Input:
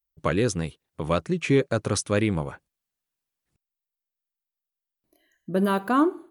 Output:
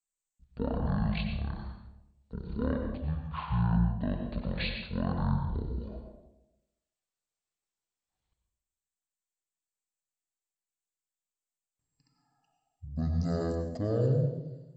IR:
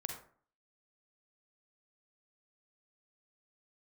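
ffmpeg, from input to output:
-filter_complex "[1:a]atrim=start_sample=2205,asetrate=48510,aresample=44100[s0];[0:a][s0]afir=irnorm=-1:irlink=0,asetrate=18846,aresample=44100,volume=0.531"

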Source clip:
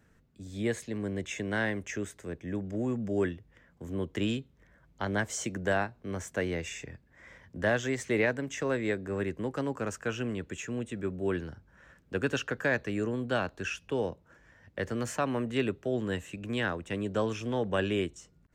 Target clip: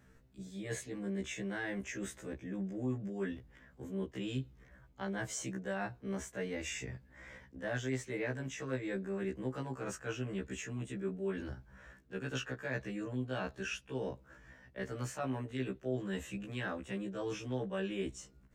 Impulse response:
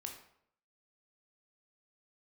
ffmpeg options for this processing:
-af "lowshelf=f=130:g=4,areverse,acompressor=threshold=0.0141:ratio=4,areverse,afftfilt=real='re*1.73*eq(mod(b,3),0)':imag='im*1.73*eq(mod(b,3),0)':win_size=2048:overlap=0.75,volume=1.41"

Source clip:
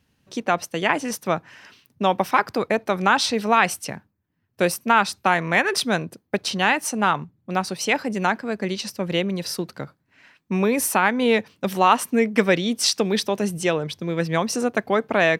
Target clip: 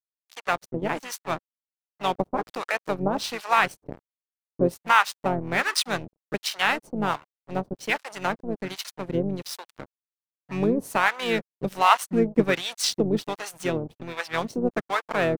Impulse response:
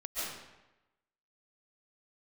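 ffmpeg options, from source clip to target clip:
-filter_complex "[0:a]aeval=exprs='sgn(val(0))*max(abs(val(0))-0.0282,0)':c=same,asplit=2[s0][s1];[s1]asetrate=33038,aresample=44100,atempo=1.33484,volume=0.398[s2];[s0][s2]amix=inputs=2:normalize=0,acrossover=split=690[s3][s4];[s3]aeval=exprs='val(0)*(1-1/2+1/2*cos(2*PI*1.3*n/s))':c=same[s5];[s4]aeval=exprs='val(0)*(1-1/2-1/2*cos(2*PI*1.3*n/s))':c=same[s6];[s5][s6]amix=inputs=2:normalize=0,volume=1.19"

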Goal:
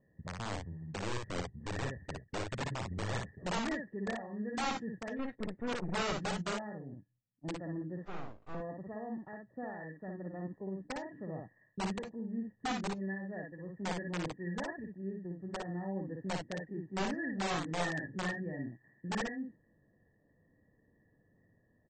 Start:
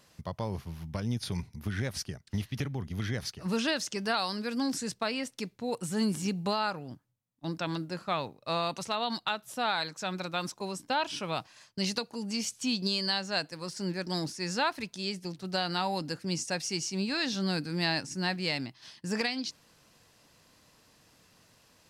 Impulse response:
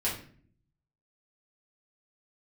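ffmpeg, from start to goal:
-filter_complex "[0:a]acrossover=split=620[s0][s1];[s0]aeval=exprs='(mod(23.7*val(0)+1,2)-1)/23.7':c=same[s2];[s1]asuperpass=centerf=1800:order=20:qfactor=7.1[s3];[s2][s3]amix=inputs=2:normalize=0,asettb=1/sr,asplit=3[s4][s5][s6];[s4]atrim=end=8.054[s7];[s5]atrim=start=8.05:end=8.55,asetpts=PTS-STARTPTS,afade=t=in:d=0.004:c=qsin,afade=t=out:st=0.496:d=0.004:c=qsin,aeval=exprs='abs(val(0))':c=same[s8];[s6]atrim=start=8.546[s9];[s7][s8]acrossfade=d=0.004:c1=hsin:c2=qsin[s10];[s10][s9]acrossfade=d=0.004:c1=qsin:c2=hsin,aecho=1:1:57|67:0.668|0.15,asettb=1/sr,asplit=3[s11][s12][s13];[s11]atrim=end=5.194[s14];[s12]atrim=start=5.19:end=6.03,asetpts=PTS-STARTPTS,afade=t=in:d=0.004:c=qsin,afade=t=out:st=0.836:d=0.004:c=qsin,aeval=exprs='0.075*(cos(1*acos(clip(val(0)/0.075,-1,1)))-cos(1*PI/2))+0.00473*(cos(2*acos(clip(val(0)/0.075,-1,1)))-cos(2*PI/2))+0.00422*(cos(5*acos(clip(val(0)/0.075,-1,1)))-cos(5*PI/2))+0.00944*(cos(6*acos(clip(val(0)/0.075,-1,1)))-cos(6*PI/2))+0.0211*(cos(8*acos(clip(val(0)/0.075,-1,1)))-cos(8*PI/2))':c=same[s15];[s13]atrim=start=6.026[s16];[s14][s15]acrossfade=d=0.004:c1=hsin:c2=qsin[s17];[s17][s16]acrossfade=d=0.004:c1=qsin:c2=hsin,volume=0.596" -ar 24000 -c:a aac -b:a 24k

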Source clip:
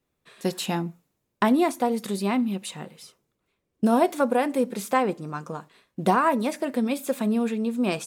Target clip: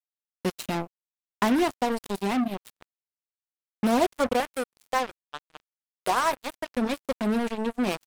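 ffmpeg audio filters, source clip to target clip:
-filter_complex "[0:a]asettb=1/sr,asplit=3[s0][s1][s2];[s0]atrim=end=4.404[s3];[s1]atrim=start=4.4:end=6.72,asetpts=PTS-STARTPTS,afade=t=in:d=0.004:c=qsin,afade=t=out:st=2.316:d=0.004:c=qsin,highpass=490[s4];[s2]atrim=start=6.716[s5];[s3][s4]acrossfade=d=0.004:c1=hsin:c2=qsin[s6];[s6][s5]acrossfade=d=0.004:c1=qsin:c2=hsin,acrusher=bits=3:mix=0:aa=0.5,volume=0.75"

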